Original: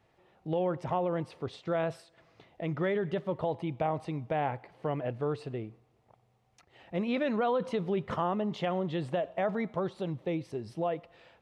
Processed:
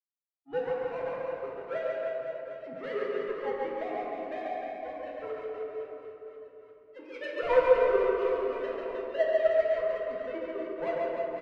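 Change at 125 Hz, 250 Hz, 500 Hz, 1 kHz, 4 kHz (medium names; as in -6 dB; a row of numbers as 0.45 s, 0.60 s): under -15 dB, -9.0 dB, +4.5 dB, -1.0 dB, -3.0 dB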